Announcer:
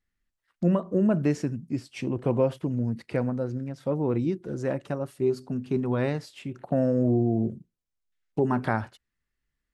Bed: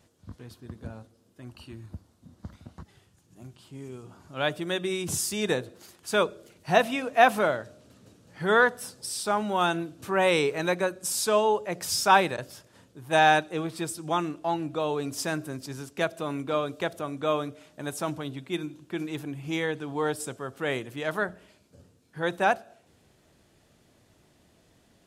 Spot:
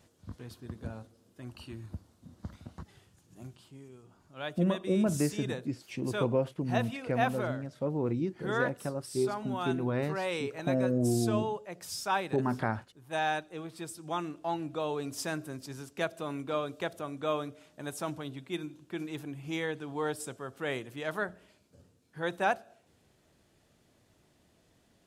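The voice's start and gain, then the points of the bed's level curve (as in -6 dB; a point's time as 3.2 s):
3.95 s, -5.0 dB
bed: 3.47 s -0.5 dB
3.89 s -11 dB
13.49 s -11 dB
14.54 s -5 dB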